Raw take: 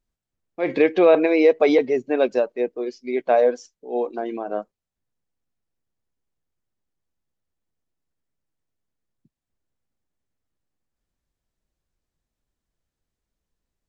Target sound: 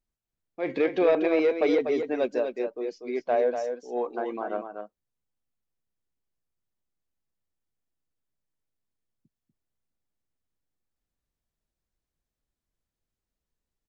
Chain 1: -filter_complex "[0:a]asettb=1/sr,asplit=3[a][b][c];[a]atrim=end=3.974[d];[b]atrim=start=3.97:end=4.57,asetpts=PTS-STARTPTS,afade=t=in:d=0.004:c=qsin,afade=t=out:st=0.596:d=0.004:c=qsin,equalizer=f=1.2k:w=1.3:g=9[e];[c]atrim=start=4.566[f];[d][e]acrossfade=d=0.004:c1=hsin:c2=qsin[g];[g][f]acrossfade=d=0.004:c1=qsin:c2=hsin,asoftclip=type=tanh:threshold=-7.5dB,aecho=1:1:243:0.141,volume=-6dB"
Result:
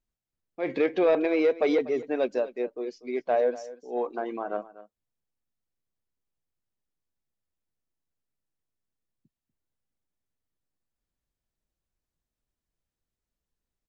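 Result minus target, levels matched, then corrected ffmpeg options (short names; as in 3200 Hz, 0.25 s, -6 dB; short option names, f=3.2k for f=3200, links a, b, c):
echo-to-direct -10 dB
-filter_complex "[0:a]asettb=1/sr,asplit=3[a][b][c];[a]atrim=end=3.974[d];[b]atrim=start=3.97:end=4.57,asetpts=PTS-STARTPTS,afade=t=in:d=0.004:c=qsin,afade=t=out:st=0.596:d=0.004:c=qsin,equalizer=f=1.2k:w=1.3:g=9[e];[c]atrim=start=4.566[f];[d][e]acrossfade=d=0.004:c1=hsin:c2=qsin[g];[g][f]acrossfade=d=0.004:c1=qsin:c2=hsin,asoftclip=type=tanh:threshold=-7.5dB,aecho=1:1:243:0.447,volume=-6dB"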